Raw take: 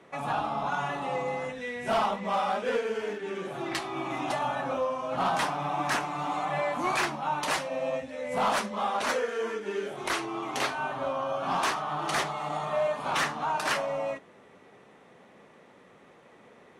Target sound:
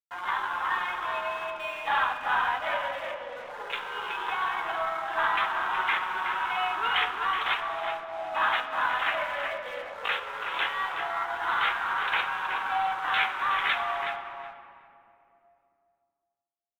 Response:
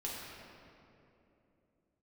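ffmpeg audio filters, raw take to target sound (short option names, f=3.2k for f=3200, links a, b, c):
-filter_complex "[0:a]afwtdn=0.0126,highpass=760,asetrate=55563,aresample=44100,atempo=0.793701,aresample=8000,acrusher=bits=4:mode=log:mix=0:aa=0.000001,aresample=44100,aeval=exprs='sgn(val(0))*max(abs(val(0))-0.00158,0)':c=same,asplit=2[a][b];[b]adelay=371,lowpass=f=2.4k:p=1,volume=-5.5dB,asplit=2[c][d];[d]adelay=371,lowpass=f=2.4k:p=1,volume=0.22,asplit=2[e][f];[f]adelay=371,lowpass=f=2.4k:p=1,volume=0.22[g];[a][c][e][g]amix=inputs=4:normalize=0,asplit=2[h][i];[1:a]atrim=start_sample=2205[j];[i][j]afir=irnorm=-1:irlink=0,volume=-7.5dB[k];[h][k]amix=inputs=2:normalize=0,volume=1.5dB"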